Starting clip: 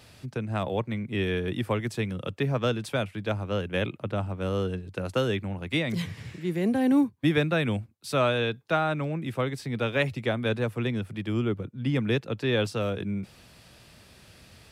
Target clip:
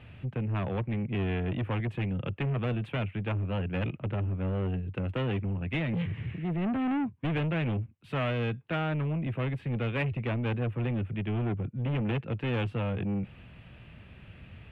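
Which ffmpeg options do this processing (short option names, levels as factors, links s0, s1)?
-af "bass=f=250:g=10,treble=f=4000:g=-13,asoftclip=type=tanh:threshold=0.0596,highshelf=f=3800:t=q:w=3:g=-10.5,volume=0.75"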